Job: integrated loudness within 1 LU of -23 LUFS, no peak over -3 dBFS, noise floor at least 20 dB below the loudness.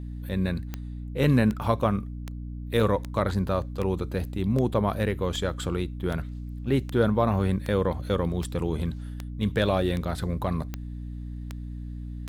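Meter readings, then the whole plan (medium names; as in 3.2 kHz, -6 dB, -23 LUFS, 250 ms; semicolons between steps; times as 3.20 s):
clicks found 16; hum 60 Hz; highest harmonic 300 Hz; hum level -33 dBFS; loudness -27.0 LUFS; peak level -10.0 dBFS; loudness target -23.0 LUFS
-> de-click; hum notches 60/120/180/240/300 Hz; trim +4 dB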